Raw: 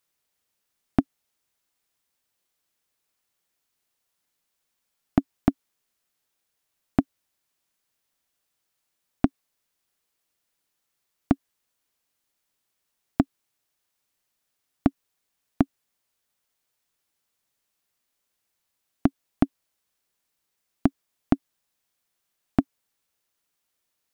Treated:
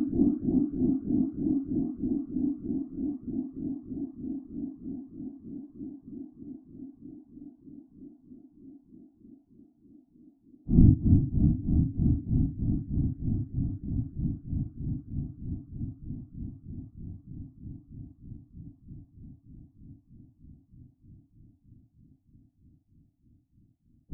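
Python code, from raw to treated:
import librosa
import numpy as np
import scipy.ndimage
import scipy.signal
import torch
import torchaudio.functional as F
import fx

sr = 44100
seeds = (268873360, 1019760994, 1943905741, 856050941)

y = fx.filter_sweep_lowpass(x, sr, from_hz=520.0, to_hz=100.0, start_s=5.78, end_s=9.59, q=1.9)
y = fx.rev_spring(y, sr, rt60_s=2.8, pass_ms=(48,), chirp_ms=65, drr_db=-1.0)
y = fx.paulstretch(y, sr, seeds[0], factor=6.5, window_s=0.05, from_s=7.58)
y = y * librosa.db_to_amplitude(7.0)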